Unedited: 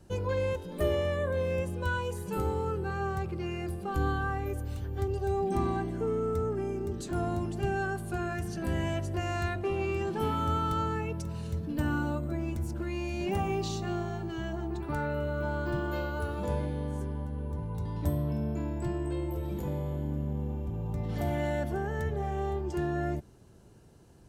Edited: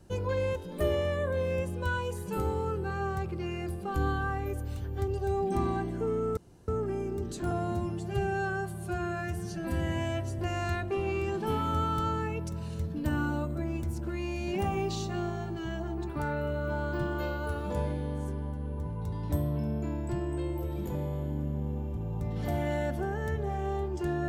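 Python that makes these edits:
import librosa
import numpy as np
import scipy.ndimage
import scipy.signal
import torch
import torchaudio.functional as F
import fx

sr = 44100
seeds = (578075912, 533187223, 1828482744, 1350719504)

y = fx.edit(x, sr, fx.insert_room_tone(at_s=6.37, length_s=0.31),
    fx.stretch_span(start_s=7.2, length_s=1.92, factor=1.5), tone=tone)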